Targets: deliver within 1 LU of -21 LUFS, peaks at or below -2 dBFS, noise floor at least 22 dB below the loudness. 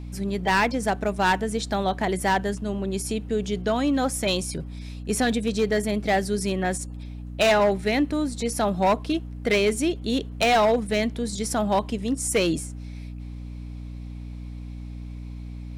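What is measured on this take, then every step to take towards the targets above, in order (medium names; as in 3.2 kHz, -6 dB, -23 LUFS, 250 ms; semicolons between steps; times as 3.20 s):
clipped samples 1.3%; clipping level -15.0 dBFS; hum 60 Hz; highest harmonic 300 Hz; hum level -34 dBFS; loudness -24.0 LUFS; peak level -15.0 dBFS; loudness target -21.0 LUFS
-> clip repair -15 dBFS; hum notches 60/120/180/240/300 Hz; trim +3 dB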